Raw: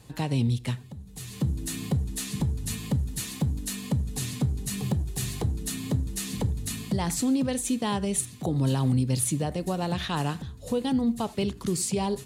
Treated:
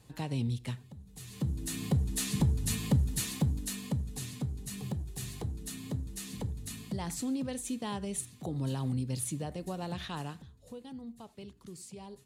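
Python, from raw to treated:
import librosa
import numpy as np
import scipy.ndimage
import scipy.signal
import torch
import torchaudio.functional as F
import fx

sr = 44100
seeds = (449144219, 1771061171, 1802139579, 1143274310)

y = fx.gain(x, sr, db=fx.line((1.23, -7.5), (2.22, 0.0), (3.14, 0.0), (4.32, -9.0), (10.07, -9.0), (10.84, -19.5)))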